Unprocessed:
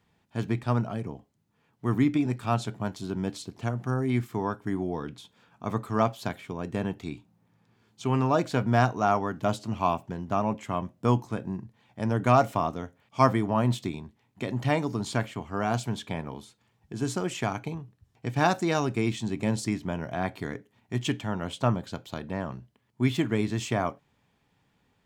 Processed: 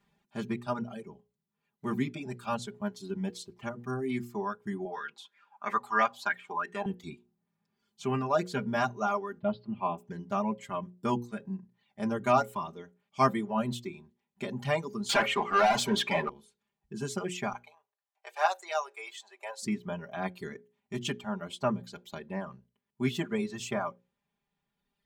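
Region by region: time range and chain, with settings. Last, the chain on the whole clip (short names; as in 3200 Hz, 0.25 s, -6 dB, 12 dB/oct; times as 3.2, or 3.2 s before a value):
4.85–6.86 weighting filter A + LFO bell 3 Hz 770–1900 Hz +16 dB
9.39–9.98 steep low-pass 4700 Hz 48 dB/oct + high shelf 2000 Hz -11.5 dB
15.09–16.29 overdrive pedal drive 30 dB, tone 2500 Hz, clips at -10.5 dBFS + low shelf 160 Hz -8 dB
17.53–19.63 steep high-pass 600 Hz + tilt shelf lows +3.5 dB, about 1400 Hz
whole clip: reverb removal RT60 1.8 s; notches 60/120/180/240/300/360/420/480/540 Hz; comb 5 ms, depth 99%; gain -5.5 dB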